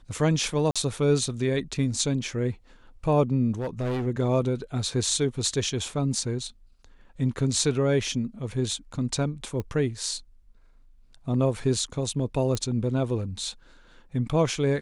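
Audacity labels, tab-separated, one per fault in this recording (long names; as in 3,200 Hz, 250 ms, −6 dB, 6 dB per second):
0.710000	0.760000	drop-out 46 ms
3.590000	4.070000	clipping −25 dBFS
9.600000	9.600000	click −20 dBFS
12.550000	12.550000	click −15 dBFS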